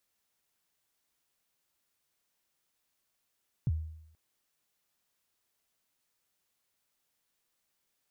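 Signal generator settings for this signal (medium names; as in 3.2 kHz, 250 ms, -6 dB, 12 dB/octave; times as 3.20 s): kick drum length 0.48 s, from 160 Hz, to 79 Hz, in 37 ms, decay 0.76 s, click off, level -23.5 dB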